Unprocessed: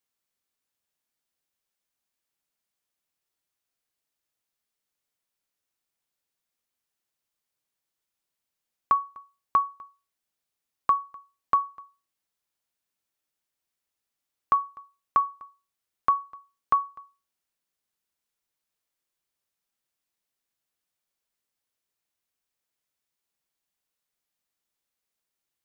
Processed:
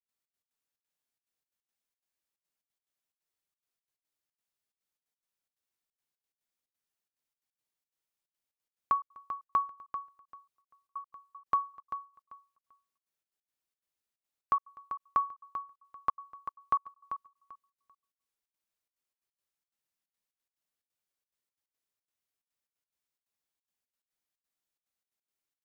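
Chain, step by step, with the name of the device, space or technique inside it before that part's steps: trance gate with a delay (step gate ".xx.x.xxx.xxxx" 178 bpm -60 dB; feedback echo 0.391 s, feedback 20%, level -10 dB); gain -6 dB

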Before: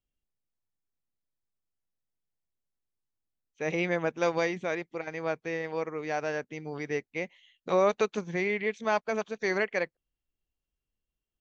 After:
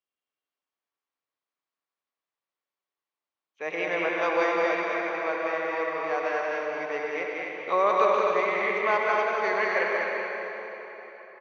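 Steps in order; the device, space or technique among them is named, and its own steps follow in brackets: station announcement (BPF 490–3600 Hz; bell 1100 Hz +7 dB 0.23 oct; loudspeakers at several distances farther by 65 m -4 dB, 87 m -5 dB; reverb RT60 4.0 s, pre-delay 76 ms, DRR 0 dB); gain +1 dB

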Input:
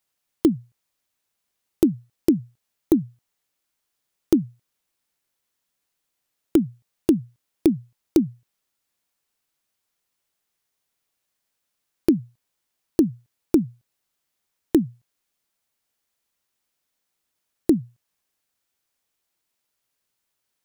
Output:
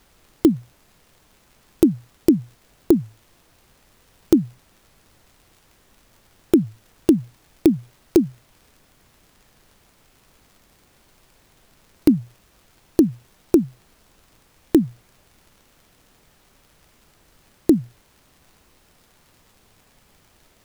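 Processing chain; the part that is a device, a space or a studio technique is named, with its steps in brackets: warped LP (record warp 33 1/3 rpm, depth 160 cents; crackle; pink noise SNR 32 dB); gain +3 dB

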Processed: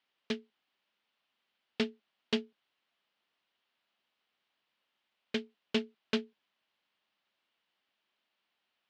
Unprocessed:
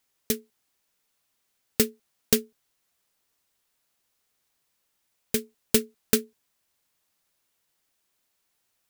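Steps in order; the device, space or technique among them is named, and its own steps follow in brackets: guitar amplifier (tube stage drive 17 dB, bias 0.4; tone controls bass -11 dB, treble -2 dB; speaker cabinet 85–4100 Hz, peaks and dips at 210 Hz +7 dB, 460 Hz -4 dB, 3000 Hz +5 dB)

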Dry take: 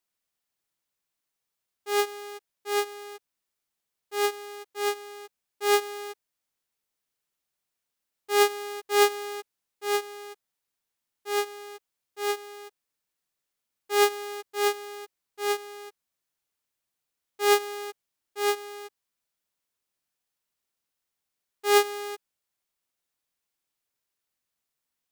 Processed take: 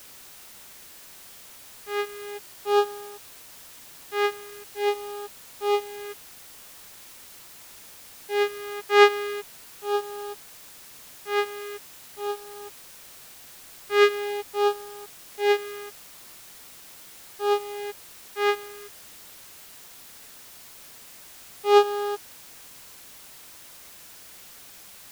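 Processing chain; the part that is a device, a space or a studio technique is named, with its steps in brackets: shortwave radio (BPF 270–2900 Hz; tremolo 0.77 Hz, depth 65%; LFO notch sine 0.42 Hz 610–2200 Hz; white noise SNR 17 dB); gain +8.5 dB

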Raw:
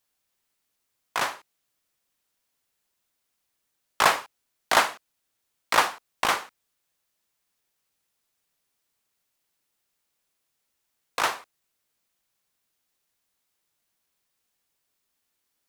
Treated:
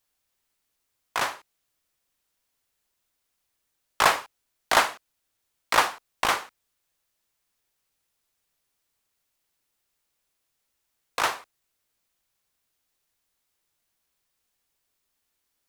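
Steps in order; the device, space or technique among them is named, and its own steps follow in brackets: low shelf boost with a cut just above (low shelf 79 Hz +7 dB; bell 190 Hz -2.5 dB 0.77 oct)

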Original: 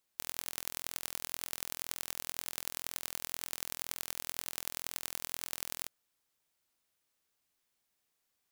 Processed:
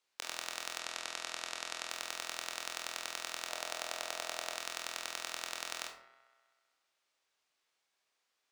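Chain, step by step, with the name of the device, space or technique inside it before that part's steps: three-band isolator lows -15 dB, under 380 Hz, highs -18 dB, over 7300 Hz; bathroom (reverb RT60 0.60 s, pre-delay 22 ms, DRR 2.5 dB); 0.79–1.9 LPF 9800 Hz 12 dB/oct; 3.49–4.58 bell 630 Hz +7.5 dB 0.77 oct; band-limited delay 64 ms, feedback 78%, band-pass 1000 Hz, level -15 dB; gain +2.5 dB

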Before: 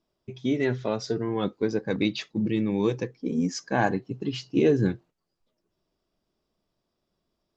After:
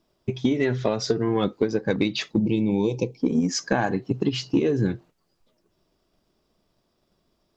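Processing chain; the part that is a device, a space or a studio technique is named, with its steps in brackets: drum-bus smash (transient shaper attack +6 dB, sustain +2 dB; compressor 12:1, threshold -25 dBFS, peak gain reduction 13 dB; soft clip -16 dBFS, distortion -24 dB); 2.39–3.2 elliptic band-stop 960–2300 Hz, stop band 40 dB; gain +8 dB

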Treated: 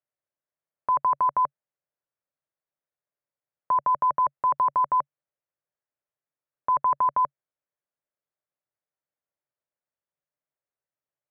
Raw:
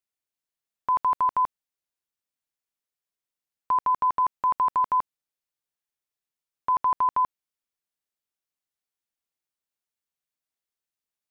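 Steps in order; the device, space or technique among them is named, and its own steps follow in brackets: bass cabinet (speaker cabinet 67–2000 Hz, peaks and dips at 140 Hz +7 dB, 220 Hz -7 dB, 580 Hz +9 dB)

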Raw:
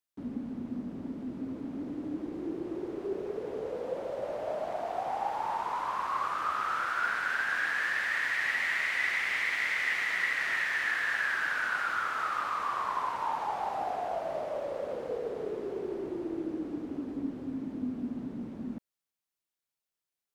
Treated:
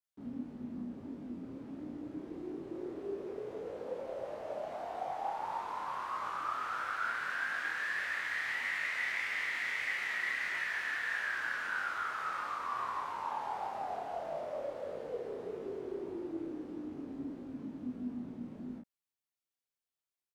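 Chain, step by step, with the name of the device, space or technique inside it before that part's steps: double-tracked vocal (doubler 33 ms -2.5 dB; chorus 1.6 Hz, delay 19.5 ms, depth 6.2 ms); gain -4.5 dB

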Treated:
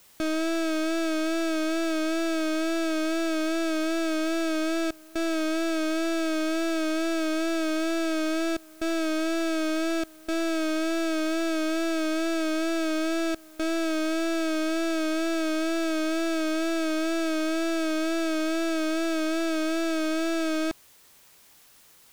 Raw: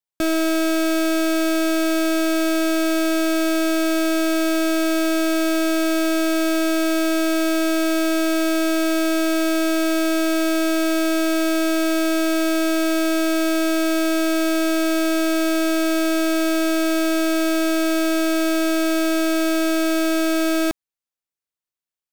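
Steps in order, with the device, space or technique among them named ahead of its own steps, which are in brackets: worn cassette (LPF 8000 Hz 12 dB/oct; wow and flutter 43 cents; level dips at 4.91/8.57/10.04/13.35, 0.242 s -24 dB; white noise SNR 29 dB); gain -7 dB

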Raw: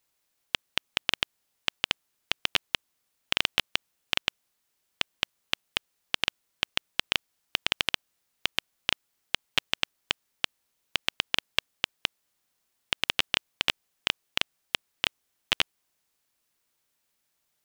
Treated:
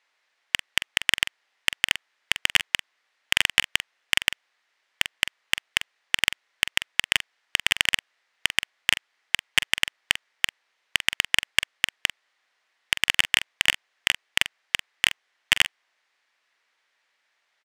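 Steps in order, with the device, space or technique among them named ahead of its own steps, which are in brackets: megaphone (BPF 610–3800 Hz; bell 1900 Hz +7 dB 0.57 oct; hard clip -11 dBFS, distortion -9 dB; doubler 45 ms -12.5 dB); gain +9 dB

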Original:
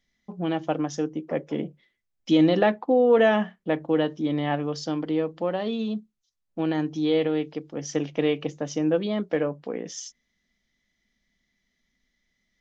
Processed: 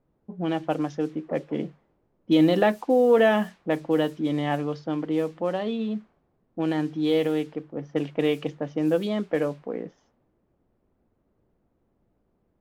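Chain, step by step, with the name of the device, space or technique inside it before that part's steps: cassette deck with a dynamic noise filter (white noise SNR 27 dB; low-pass opened by the level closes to 330 Hz, open at -19.5 dBFS)

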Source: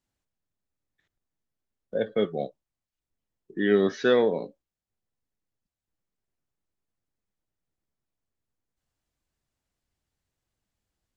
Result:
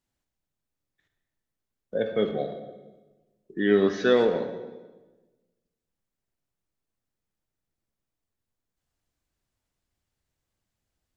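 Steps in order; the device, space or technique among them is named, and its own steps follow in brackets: saturated reverb return (on a send at -6 dB: reverb RT60 1.2 s, pre-delay 39 ms + soft clip -19.5 dBFS, distortion -13 dB)

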